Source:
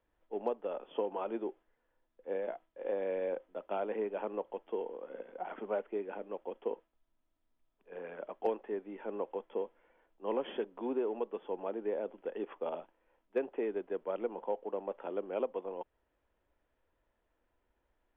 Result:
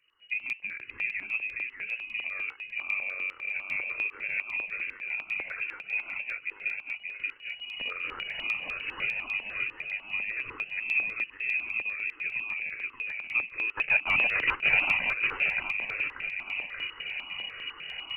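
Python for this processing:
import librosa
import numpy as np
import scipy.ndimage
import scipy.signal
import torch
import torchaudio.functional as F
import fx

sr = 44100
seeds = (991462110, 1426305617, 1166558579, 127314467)

y = fx.delta_mod(x, sr, bps=64000, step_db=-41.5, at=(8.05, 9.27))
y = fx.recorder_agc(y, sr, target_db=-30.0, rise_db_per_s=29.0, max_gain_db=30)
y = fx.leveller(y, sr, passes=5, at=(13.77, 15.05))
y = fx.echo_feedback(y, sr, ms=581, feedback_pct=52, wet_db=-3.0)
y = fx.dynamic_eq(y, sr, hz=740.0, q=0.7, threshold_db=-40.0, ratio=4.0, max_db=-6)
y = fx.freq_invert(y, sr, carrier_hz=2900)
y = fx.phaser_held(y, sr, hz=10.0, low_hz=200.0, high_hz=1600.0)
y = y * 10.0 ** (8.0 / 20.0)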